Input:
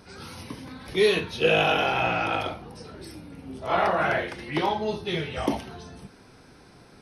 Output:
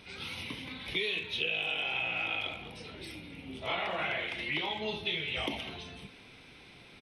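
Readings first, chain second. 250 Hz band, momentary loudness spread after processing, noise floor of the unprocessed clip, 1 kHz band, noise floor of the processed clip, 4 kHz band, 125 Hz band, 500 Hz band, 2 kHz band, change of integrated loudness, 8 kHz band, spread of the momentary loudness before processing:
-11.5 dB, 18 LU, -52 dBFS, -13.5 dB, -54 dBFS, -2.0 dB, -11.5 dB, -14.5 dB, -4.5 dB, -8.5 dB, -10.0 dB, 20 LU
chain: high-order bell 2.8 kHz +14 dB 1.1 oct; compression 8:1, threshold -25 dBFS, peak gain reduction 17 dB; speakerphone echo 210 ms, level -12 dB; trim -5.5 dB

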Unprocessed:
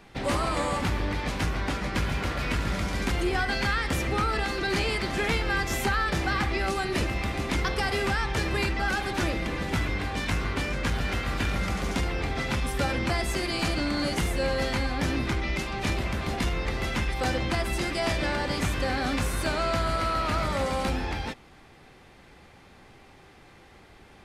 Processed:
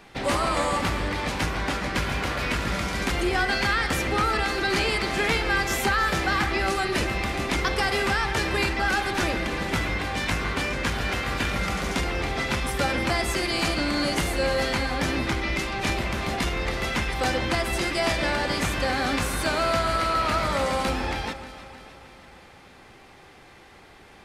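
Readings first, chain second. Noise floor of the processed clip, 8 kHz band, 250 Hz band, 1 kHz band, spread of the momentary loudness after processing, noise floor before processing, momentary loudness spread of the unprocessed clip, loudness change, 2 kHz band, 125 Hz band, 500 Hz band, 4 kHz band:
-50 dBFS, +4.0 dB, +1.5 dB, +4.0 dB, 4 LU, -53 dBFS, 3 LU, +3.0 dB, +4.0 dB, -0.5 dB, +3.0 dB, +4.0 dB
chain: bass shelf 270 Hz -6 dB; on a send: echo whose repeats swap between lows and highs 155 ms, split 2.2 kHz, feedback 75%, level -12 dB; on the sum: trim +4 dB

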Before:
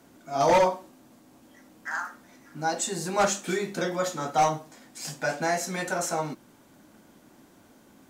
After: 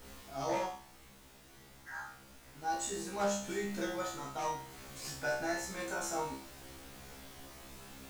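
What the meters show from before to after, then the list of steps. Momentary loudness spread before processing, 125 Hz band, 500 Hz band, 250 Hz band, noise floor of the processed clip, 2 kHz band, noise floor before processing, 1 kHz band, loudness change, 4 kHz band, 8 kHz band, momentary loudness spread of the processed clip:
17 LU, -11.0 dB, -11.0 dB, -8.0 dB, -58 dBFS, -8.5 dB, -57 dBFS, -11.5 dB, -10.5 dB, -8.5 dB, -8.5 dB, 20 LU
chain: added noise pink -44 dBFS; gain riding within 4 dB 0.5 s; feedback comb 67 Hz, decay 0.46 s, harmonics all, mix 100%

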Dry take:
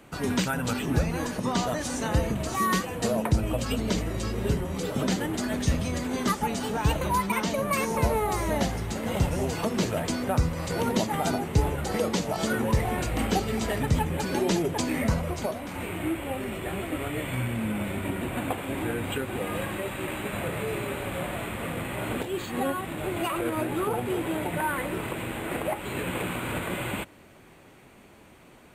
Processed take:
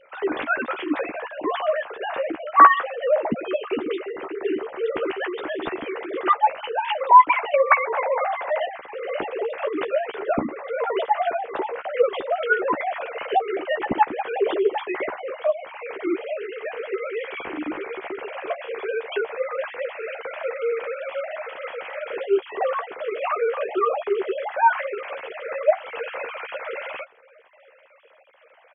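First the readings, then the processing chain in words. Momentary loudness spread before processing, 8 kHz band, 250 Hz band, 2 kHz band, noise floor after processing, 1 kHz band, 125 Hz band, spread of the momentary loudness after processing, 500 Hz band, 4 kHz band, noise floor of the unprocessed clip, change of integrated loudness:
6 LU, under -40 dB, -4.5 dB, +5.5 dB, -53 dBFS, +10.0 dB, -22.0 dB, 12 LU, +6.5 dB, -3.0 dB, -52 dBFS, +4.5 dB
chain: formants replaced by sine waves; doubling 13 ms -7.5 dB; trim +3 dB

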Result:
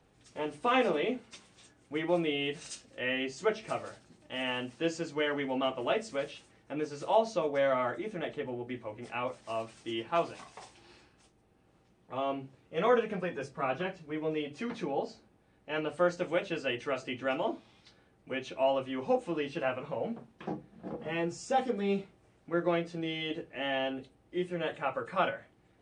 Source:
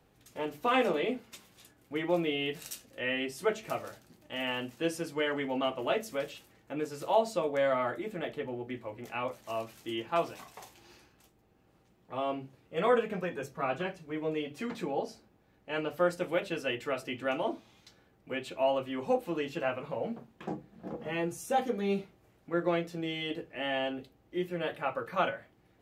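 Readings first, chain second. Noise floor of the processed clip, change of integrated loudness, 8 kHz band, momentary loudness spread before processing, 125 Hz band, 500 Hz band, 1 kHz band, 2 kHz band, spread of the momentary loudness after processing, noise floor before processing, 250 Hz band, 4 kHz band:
-66 dBFS, 0.0 dB, -1.5 dB, 12 LU, 0.0 dB, 0.0 dB, 0.0 dB, 0.0 dB, 12 LU, -66 dBFS, 0.0 dB, 0.0 dB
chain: knee-point frequency compression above 3.8 kHz 1.5:1

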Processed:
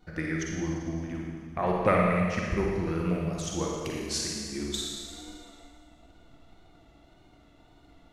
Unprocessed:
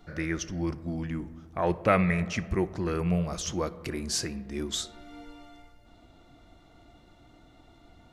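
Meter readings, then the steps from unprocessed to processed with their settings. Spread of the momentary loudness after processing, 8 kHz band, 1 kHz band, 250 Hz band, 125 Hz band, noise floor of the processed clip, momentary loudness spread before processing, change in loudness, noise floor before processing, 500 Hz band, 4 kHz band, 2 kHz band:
13 LU, 0.0 dB, +1.5 dB, 0.0 dB, -0.5 dB, -58 dBFS, 15 LU, 0.0 dB, -57 dBFS, +1.0 dB, +0.5 dB, 0.0 dB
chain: transient shaper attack +7 dB, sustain -3 dB; wow and flutter 77 cents; Schroeder reverb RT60 1.8 s, DRR -2 dB; trim -6 dB

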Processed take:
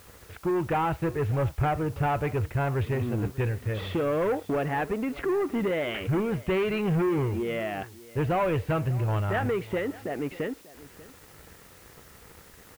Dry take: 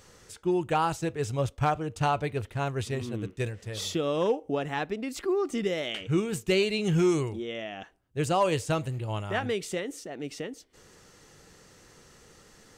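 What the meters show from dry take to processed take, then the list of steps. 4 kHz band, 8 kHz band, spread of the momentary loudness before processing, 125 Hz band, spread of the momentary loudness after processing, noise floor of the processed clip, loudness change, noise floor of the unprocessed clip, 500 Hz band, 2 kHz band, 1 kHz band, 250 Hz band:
-6.5 dB, no reading, 12 LU, +4.0 dB, 7 LU, -52 dBFS, +1.5 dB, -57 dBFS, +1.0 dB, +1.5 dB, +0.5 dB, +1.5 dB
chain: waveshaping leveller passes 3; inverse Chebyshev low-pass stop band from 9.4 kHz, stop band 70 dB; bass shelf 330 Hz -3.5 dB; in parallel at 0 dB: compression 6:1, threshold -32 dBFS, peak gain reduction 13.5 dB; on the sum: peaking EQ 68 Hz +10 dB 1.3 oct; word length cut 8-bit, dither triangular; on a send: delay 591 ms -19.5 dB; on the sum: trim -7 dB

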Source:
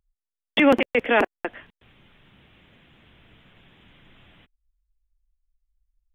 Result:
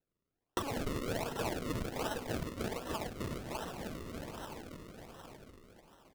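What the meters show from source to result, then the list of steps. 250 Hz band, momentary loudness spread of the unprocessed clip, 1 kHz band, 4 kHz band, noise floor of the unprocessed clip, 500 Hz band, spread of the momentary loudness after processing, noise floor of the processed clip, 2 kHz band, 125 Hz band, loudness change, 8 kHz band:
-13.0 dB, 16 LU, -10.5 dB, -11.0 dB, under -85 dBFS, -13.5 dB, 15 LU, under -85 dBFS, -17.5 dB, +6.0 dB, -18.0 dB, no reading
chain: backward echo that repeats 149 ms, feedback 72%, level -3 dB; peak limiter -14 dBFS, peak gain reduction 9.5 dB; comb 4.6 ms, depth 80%; gain riding within 3 dB 2 s; high-pass 1.4 kHz 6 dB/octave; feedback delay 902 ms, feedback 24%, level -7 dB; decimation with a swept rate 38×, swing 100% 1.3 Hz; compression 6:1, threshold -41 dBFS, peak gain reduction 17 dB; trim +6.5 dB

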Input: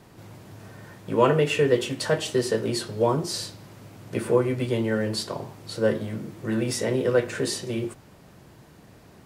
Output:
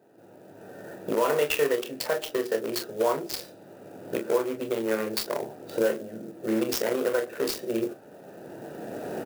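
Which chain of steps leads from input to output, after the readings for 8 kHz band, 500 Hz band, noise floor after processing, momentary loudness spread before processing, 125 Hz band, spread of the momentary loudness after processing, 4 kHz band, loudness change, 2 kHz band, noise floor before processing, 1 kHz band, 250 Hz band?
-3.0 dB, -2.0 dB, -51 dBFS, 15 LU, -16.0 dB, 19 LU, -3.0 dB, -3.0 dB, -2.0 dB, -51 dBFS, -2.5 dB, -4.0 dB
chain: local Wiener filter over 41 samples; recorder AGC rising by 14 dB/s; high-pass 520 Hz 12 dB/octave; dynamic bell 5.6 kHz, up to +7 dB, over -54 dBFS, Q 3.6; peak limiter -18.5 dBFS, peak gain reduction 9.5 dB; on a send: early reflections 27 ms -8 dB, 42 ms -12.5 dB; on the sum: sampling jitter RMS 0.031 ms; trim +3 dB

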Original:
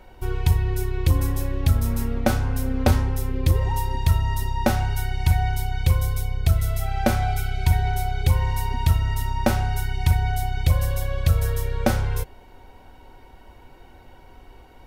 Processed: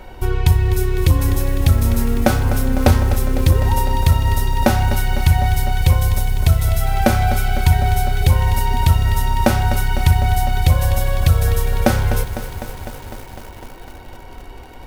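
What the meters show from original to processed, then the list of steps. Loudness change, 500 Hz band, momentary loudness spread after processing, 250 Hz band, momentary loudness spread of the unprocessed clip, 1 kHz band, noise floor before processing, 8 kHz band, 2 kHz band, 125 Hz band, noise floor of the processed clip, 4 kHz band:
+6.0 dB, +6.5 dB, 6 LU, +6.5 dB, 4 LU, +7.0 dB, -48 dBFS, +7.0 dB, +7.0 dB, +6.0 dB, -36 dBFS, +7.0 dB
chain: in parallel at +2.5 dB: compression 6:1, threshold -28 dBFS, peak gain reduction 14.5 dB; on the sum: bit-crushed delay 252 ms, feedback 80%, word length 6-bit, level -11.5 dB; trim +3 dB

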